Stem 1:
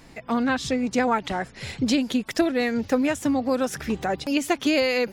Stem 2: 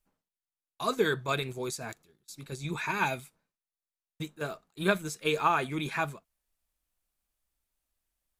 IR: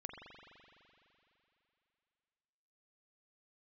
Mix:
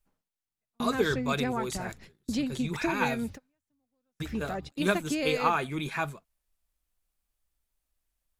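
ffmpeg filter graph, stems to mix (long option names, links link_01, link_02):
-filter_complex "[0:a]bass=frequency=250:gain=6,treble=frequency=4000:gain=-1,adelay=450,volume=-11dB[link_01];[1:a]volume=-0.5dB,asplit=2[link_02][link_03];[link_03]apad=whole_len=245979[link_04];[link_01][link_04]sidechaingate=range=-47dB:threshold=-56dB:ratio=16:detection=peak[link_05];[link_05][link_02]amix=inputs=2:normalize=0,lowshelf=frequency=72:gain=7"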